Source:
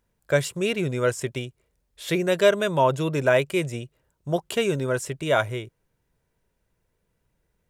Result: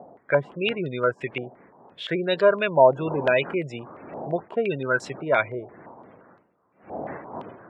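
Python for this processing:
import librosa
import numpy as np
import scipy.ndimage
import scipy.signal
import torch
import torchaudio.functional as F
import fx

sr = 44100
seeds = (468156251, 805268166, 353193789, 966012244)

y = fx.dmg_wind(x, sr, seeds[0], corner_hz=570.0, level_db=-41.0)
y = scipy.signal.sosfilt(scipy.signal.butter(2, 150.0, 'highpass', fs=sr, output='sos'), y)
y = fx.spec_gate(y, sr, threshold_db=-25, keep='strong')
y = fx.filter_held_lowpass(y, sr, hz=5.8, low_hz=730.0, high_hz=4100.0)
y = y * librosa.db_to_amplitude(-2.0)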